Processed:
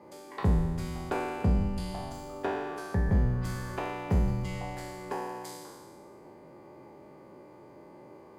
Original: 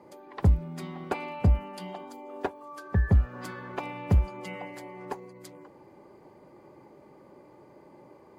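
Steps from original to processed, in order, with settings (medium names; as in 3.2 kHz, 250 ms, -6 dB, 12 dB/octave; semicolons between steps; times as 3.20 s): spectral sustain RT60 1.47 s; in parallel at +2 dB: compression, threshold -33 dBFS, peak gain reduction 18 dB; on the sum: trim -8 dB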